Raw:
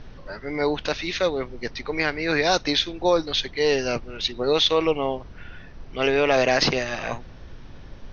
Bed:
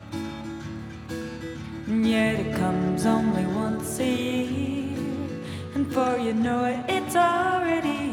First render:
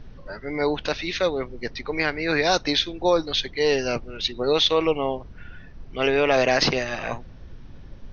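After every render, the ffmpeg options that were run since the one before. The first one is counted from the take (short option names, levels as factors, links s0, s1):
-af "afftdn=nr=6:nf=-42"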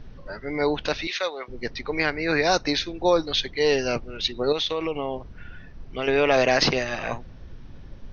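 -filter_complex "[0:a]asettb=1/sr,asplit=3[s0][s1][s2];[s0]atrim=end=1.074[s3];[s1]atrim=start=1.07:end=1.48,asetpts=PTS-STARTPTS,afade=t=in:d=0.004:c=qsin,afade=t=out:st=0.406:d=0.004:c=qsin,highpass=700[s4];[s2]atrim=start=1.476[s5];[s3][s4]acrossfade=d=0.004:c1=hsin:c2=qsin[s6];[s6][s5]acrossfade=d=0.004:c1=qsin:c2=hsin,asettb=1/sr,asplit=3[s7][s8][s9];[s7]atrim=end=2.104[s10];[s8]atrim=start=2.1:end=2.95,asetpts=PTS-STARTPTS,afade=t=in:d=0.004:c=qsin,afade=t=out:st=0.846:d=0.004:c=qsin,equalizer=f=3300:t=o:w=0.25:g=-10.5[s11];[s9]atrim=start=2.946[s12];[s10][s11]acrossfade=d=0.004:c1=hsin:c2=qsin[s13];[s13][s12]acrossfade=d=0.004:c1=qsin:c2=hsin,asettb=1/sr,asplit=3[s14][s15][s16];[s14]atrim=end=4.524[s17];[s15]atrim=start=4.52:end=6.08,asetpts=PTS-STARTPTS,afade=t=in:d=0.004:c=qsin,afade=t=out:st=1.556:d=0.004:c=qsin,acompressor=threshold=0.0708:ratio=4:attack=3.2:release=140:knee=1:detection=peak[s18];[s16]atrim=start=6.076[s19];[s17][s18]acrossfade=d=0.004:c1=hsin:c2=qsin[s20];[s20][s19]acrossfade=d=0.004:c1=qsin:c2=hsin"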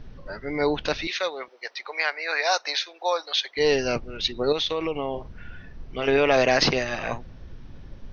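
-filter_complex "[0:a]asettb=1/sr,asplit=3[s0][s1][s2];[s0]atrim=end=1.484[s3];[s1]atrim=start=1.48:end=3.57,asetpts=PTS-STARTPTS,afade=t=in:d=0.004:c=qsin,afade=t=out:st=2.086:d=0.004:c=qsin,highpass=f=610:w=0.5412,highpass=f=610:w=1.3066[s4];[s2]atrim=start=3.566[s5];[s3][s4]acrossfade=d=0.004:c1=hsin:c2=qsin[s6];[s6][s5]acrossfade=d=0.004:c1=qsin:c2=hsin,asettb=1/sr,asplit=3[s7][s8][s9];[s7]atrim=end=5.104[s10];[s8]atrim=start=5.1:end=6.18,asetpts=PTS-STARTPTS,afade=t=in:d=0.004:c=qsin,afade=t=out:st=1.076:d=0.004:c=qsin,asplit=2[s11][s12];[s12]adelay=44,volume=0.335[s13];[s11][s13]amix=inputs=2:normalize=0,atrim=end_sample=47628[s14];[s9]atrim=start=6.176[s15];[s10][s14]acrossfade=d=0.004:c1=hsin:c2=qsin[s16];[s16][s15]acrossfade=d=0.004:c1=qsin:c2=hsin"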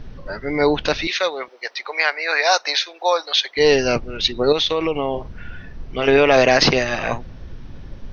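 -af "volume=2.11,alimiter=limit=0.708:level=0:latency=1"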